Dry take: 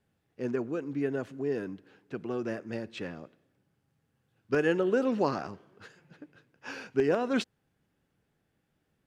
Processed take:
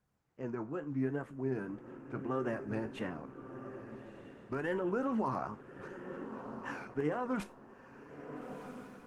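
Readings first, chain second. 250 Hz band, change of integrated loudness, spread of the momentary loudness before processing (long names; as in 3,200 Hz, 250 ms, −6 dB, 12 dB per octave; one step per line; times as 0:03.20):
−4.5 dB, −7.5 dB, 16 LU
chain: stylus tracing distortion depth 0.055 ms
octave-band graphic EQ 125/500/1,000/4,000 Hz +3/−4/+9/−12 dB
brickwall limiter −22 dBFS, peak gain reduction 9.5 dB
tuned comb filter 70 Hz, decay 0.22 s, harmonics all, mix 70%
tape wow and flutter 120 cents
on a send: feedback delay with all-pass diffusion 1,302 ms, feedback 41%, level −11.5 dB
on the sum: speech leveller within 5 dB 2 s
level +1 dB
Opus 20 kbit/s 48,000 Hz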